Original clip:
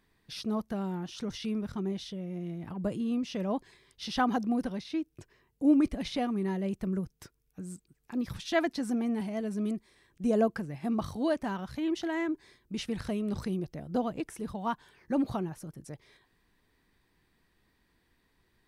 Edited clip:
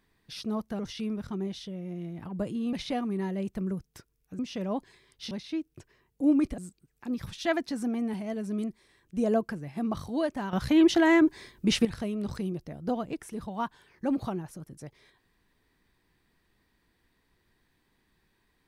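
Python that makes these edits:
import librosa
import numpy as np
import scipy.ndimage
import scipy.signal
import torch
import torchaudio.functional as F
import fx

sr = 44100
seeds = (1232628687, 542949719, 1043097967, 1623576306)

y = fx.edit(x, sr, fx.cut(start_s=0.79, length_s=0.45),
    fx.cut(start_s=4.1, length_s=0.62),
    fx.move(start_s=5.99, length_s=1.66, to_s=3.18),
    fx.clip_gain(start_s=11.6, length_s=1.32, db=11.0), tone=tone)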